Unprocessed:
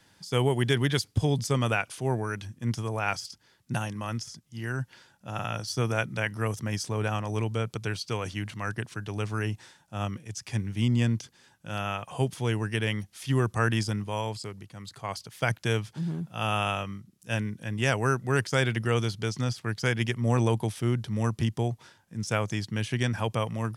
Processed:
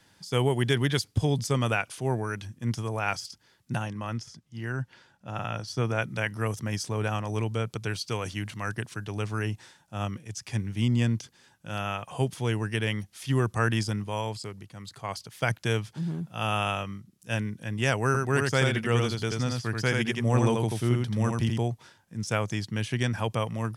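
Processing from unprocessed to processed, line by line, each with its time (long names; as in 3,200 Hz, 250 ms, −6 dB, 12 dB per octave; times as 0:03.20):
0:03.75–0:06.02: low-pass filter 3,700 Hz 6 dB per octave
0:07.89–0:09.05: high-shelf EQ 5,900 Hz +4 dB
0:18.06–0:21.62: single-tap delay 84 ms −3.5 dB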